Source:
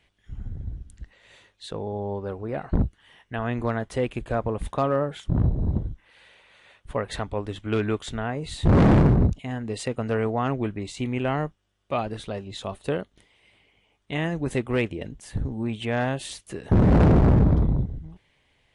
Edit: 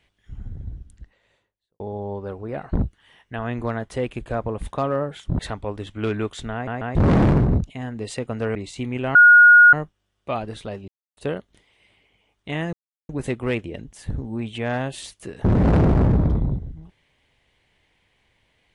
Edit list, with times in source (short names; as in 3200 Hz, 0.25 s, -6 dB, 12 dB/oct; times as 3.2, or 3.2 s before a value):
0.66–1.8 studio fade out
5.39–7.08 cut
8.22 stutter in place 0.14 s, 3 plays
10.24–10.76 cut
11.36 add tone 1440 Hz -6.5 dBFS 0.58 s
12.51–12.8 mute
14.36 insert silence 0.36 s